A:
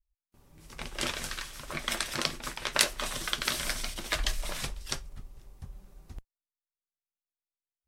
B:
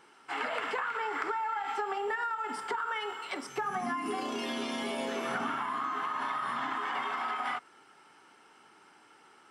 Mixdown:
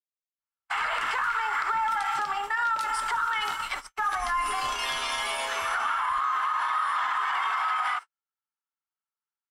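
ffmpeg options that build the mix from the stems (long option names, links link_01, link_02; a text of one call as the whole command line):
ffmpeg -i stem1.wav -i stem2.wav -filter_complex "[0:a]volume=-11dB[link_01];[1:a]highpass=frequency=1100:width_type=q:width=1.6,highshelf=frequency=7300:gain=7,aeval=exprs='0.224*sin(PI/2*1.58*val(0)/0.224)':channel_layout=same,adelay=400,volume=-0.5dB[link_02];[link_01][link_02]amix=inputs=2:normalize=0,agate=range=-52dB:threshold=-30dB:ratio=16:detection=peak,alimiter=limit=-19.5dB:level=0:latency=1:release=81" out.wav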